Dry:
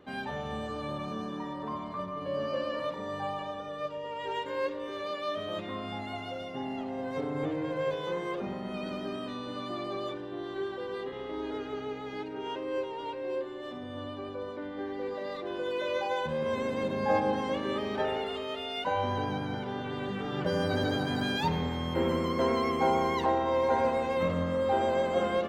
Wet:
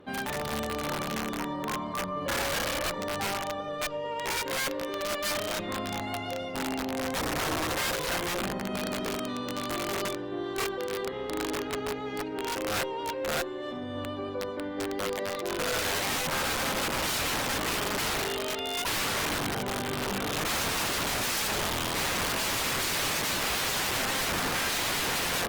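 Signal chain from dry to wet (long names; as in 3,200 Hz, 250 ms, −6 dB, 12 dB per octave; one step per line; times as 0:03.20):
wrap-around overflow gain 28.5 dB
level +4 dB
Opus 32 kbit/s 48,000 Hz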